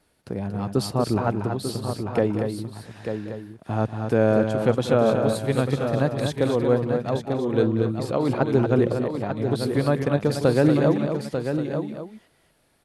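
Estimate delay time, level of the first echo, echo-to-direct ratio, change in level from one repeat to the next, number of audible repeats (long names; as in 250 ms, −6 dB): 189 ms, −14.0 dB, −3.0 dB, repeats not evenly spaced, 5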